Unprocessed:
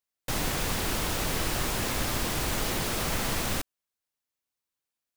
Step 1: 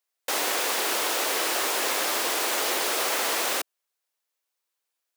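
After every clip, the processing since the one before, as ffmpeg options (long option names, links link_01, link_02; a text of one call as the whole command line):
ffmpeg -i in.wav -af "highpass=frequency=380:width=0.5412,highpass=frequency=380:width=1.3066,volume=5.5dB" out.wav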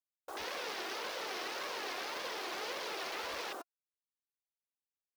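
ffmpeg -i in.wav -af "aeval=exprs='(mod(7.94*val(0)+1,2)-1)/7.94':channel_layout=same,afwtdn=0.0282,flanger=delay=1.7:depth=1.2:regen=51:speed=1.8:shape=triangular,volume=-7dB" out.wav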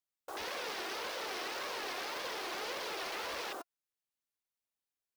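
ffmpeg -i in.wav -af "acrusher=bits=4:mode=log:mix=0:aa=0.000001,volume=35dB,asoftclip=hard,volume=-35dB,volume=1dB" out.wav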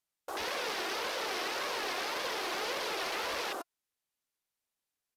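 ffmpeg -i in.wav -af "aresample=32000,aresample=44100,volume=4.5dB" out.wav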